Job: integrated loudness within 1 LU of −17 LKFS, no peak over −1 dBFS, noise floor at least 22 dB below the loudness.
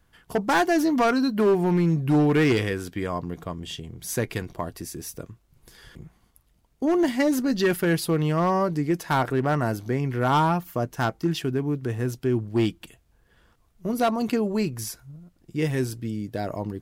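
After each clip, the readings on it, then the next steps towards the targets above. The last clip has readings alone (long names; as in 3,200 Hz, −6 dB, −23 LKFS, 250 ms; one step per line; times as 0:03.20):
share of clipped samples 1.5%; peaks flattened at −15.5 dBFS; integrated loudness −24.5 LKFS; sample peak −15.5 dBFS; target loudness −17.0 LKFS
→ clipped peaks rebuilt −15.5 dBFS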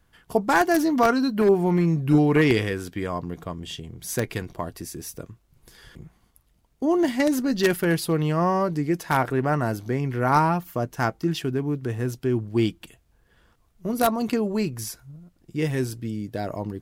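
share of clipped samples 0.0%; integrated loudness −24.0 LKFS; sample peak −6.5 dBFS; target loudness −17.0 LKFS
→ level +7 dB
brickwall limiter −1 dBFS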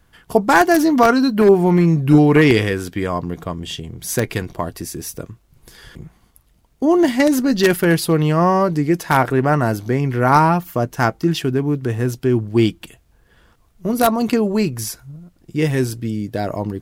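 integrated loudness −17.0 LKFS; sample peak −1.0 dBFS; background noise floor −58 dBFS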